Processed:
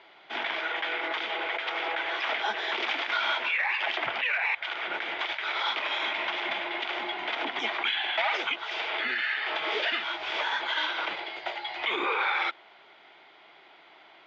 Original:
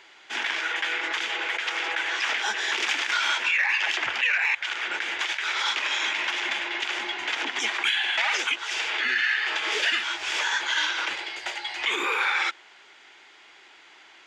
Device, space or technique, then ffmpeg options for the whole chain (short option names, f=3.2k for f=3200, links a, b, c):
guitar cabinet: -af "highpass=93,equalizer=f=160:t=q:w=4:g=8,equalizer=f=660:t=q:w=4:g=8,equalizer=f=1.7k:t=q:w=4:g=-7,equalizer=f=2.7k:t=q:w=4:g=-6,lowpass=f=3.6k:w=0.5412,lowpass=f=3.6k:w=1.3066"